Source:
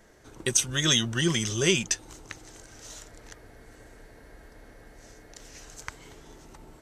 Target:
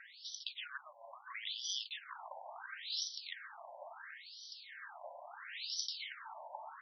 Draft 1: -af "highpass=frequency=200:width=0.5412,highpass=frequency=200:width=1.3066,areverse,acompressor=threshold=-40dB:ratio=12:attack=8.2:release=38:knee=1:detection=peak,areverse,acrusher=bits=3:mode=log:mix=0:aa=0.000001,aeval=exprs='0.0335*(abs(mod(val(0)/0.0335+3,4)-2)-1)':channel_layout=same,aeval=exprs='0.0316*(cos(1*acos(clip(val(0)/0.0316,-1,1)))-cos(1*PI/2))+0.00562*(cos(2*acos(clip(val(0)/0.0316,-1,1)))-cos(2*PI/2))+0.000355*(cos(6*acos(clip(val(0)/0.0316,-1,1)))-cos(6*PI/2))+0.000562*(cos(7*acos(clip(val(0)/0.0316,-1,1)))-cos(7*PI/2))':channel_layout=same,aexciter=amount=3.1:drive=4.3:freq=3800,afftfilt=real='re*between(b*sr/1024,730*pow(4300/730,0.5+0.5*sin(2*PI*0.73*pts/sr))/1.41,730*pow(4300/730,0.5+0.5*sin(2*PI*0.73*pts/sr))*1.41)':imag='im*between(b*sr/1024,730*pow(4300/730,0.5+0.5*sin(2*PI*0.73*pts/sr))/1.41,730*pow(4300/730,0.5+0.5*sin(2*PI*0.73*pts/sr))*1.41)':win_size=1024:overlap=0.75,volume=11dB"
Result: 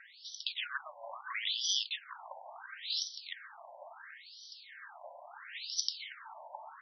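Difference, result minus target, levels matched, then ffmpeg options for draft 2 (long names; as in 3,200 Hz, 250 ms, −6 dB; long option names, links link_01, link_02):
downward compressor: peak gain reduction −7 dB
-af "highpass=frequency=200:width=0.5412,highpass=frequency=200:width=1.3066,areverse,acompressor=threshold=-47.5dB:ratio=12:attack=8.2:release=38:knee=1:detection=peak,areverse,acrusher=bits=3:mode=log:mix=0:aa=0.000001,aeval=exprs='0.0335*(abs(mod(val(0)/0.0335+3,4)-2)-1)':channel_layout=same,aeval=exprs='0.0316*(cos(1*acos(clip(val(0)/0.0316,-1,1)))-cos(1*PI/2))+0.00562*(cos(2*acos(clip(val(0)/0.0316,-1,1)))-cos(2*PI/2))+0.000355*(cos(6*acos(clip(val(0)/0.0316,-1,1)))-cos(6*PI/2))+0.000562*(cos(7*acos(clip(val(0)/0.0316,-1,1)))-cos(7*PI/2))':channel_layout=same,aexciter=amount=3.1:drive=4.3:freq=3800,afftfilt=real='re*between(b*sr/1024,730*pow(4300/730,0.5+0.5*sin(2*PI*0.73*pts/sr))/1.41,730*pow(4300/730,0.5+0.5*sin(2*PI*0.73*pts/sr))*1.41)':imag='im*between(b*sr/1024,730*pow(4300/730,0.5+0.5*sin(2*PI*0.73*pts/sr))/1.41,730*pow(4300/730,0.5+0.5*sin(2*PI*0.73*pts/sr))*1.41)':win_size=1024:overlap=0.75,volume=11dB"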